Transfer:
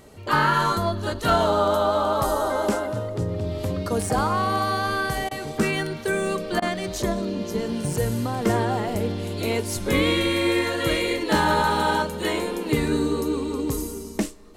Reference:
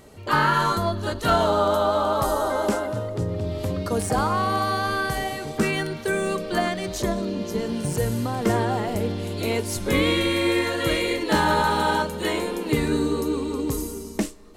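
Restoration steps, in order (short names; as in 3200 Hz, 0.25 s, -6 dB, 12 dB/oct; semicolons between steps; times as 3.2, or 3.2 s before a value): interpolate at 5.29/6.6, 20 ms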